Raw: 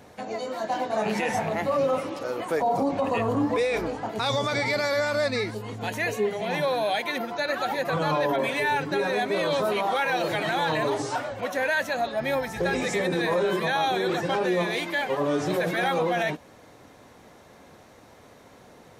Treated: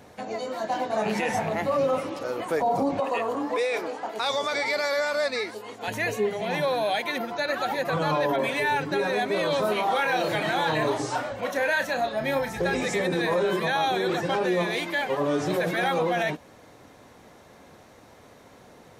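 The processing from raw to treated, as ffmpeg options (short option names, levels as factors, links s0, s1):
-filter_complex "[0:a]asettb=1/sr,asplit=3[s0][s1][s2];[s0]atrim=end=3.004[s3];[s1]atrim=start=3:end=5.88,asetpts=PTS-STARTPTS,afade=t=in:d=0.004:c=qsin,afade=t=out:st=2.876:d=0.004:c=qsin,highpass=390[s4];[s2]atrim=start=5.876[s5];[s3][s4]acrossfade=d=0.004:c1=hsin:c2=qsin[s6];[s6][s5]acrossfade=d=0.004:c1=qsin:c2=hsin,asettb=1/sr,asplit=3[s7][s8][s9];[s7]atrim=end=9.594[s10];[s8]atrim=start=9.59:end=12.57,asetpts=PTS-STARTPTS,afade=t=in:d=0.004:c=qsin,afade=t=out:st=2.976:d=0.004:c=qsin,asplit=2[s11][s12];[s12]adelay=33,volume=0.376[s13];[s11][s13]amix=inputs=2:normalize=0,atrim=end_sample=131418[s14];[s9]atrim=start=12.566[s15];[s10][s14]acrossfade=d=0.004:c1=hsin:c2=qsin[s16];[s16][s15]acrossfade=d=0.004:c1=qsin:c2=hsin"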